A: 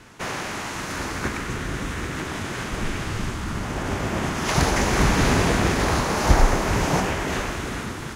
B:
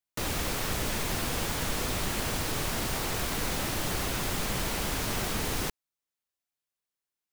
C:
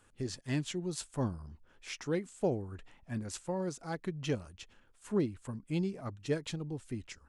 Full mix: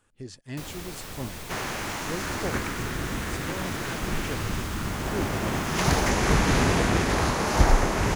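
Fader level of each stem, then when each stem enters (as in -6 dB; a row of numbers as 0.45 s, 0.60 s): -2.5 dB, -8.0 dB, -2.5 dB; 1.30 s, 0.40 s, 0.00 s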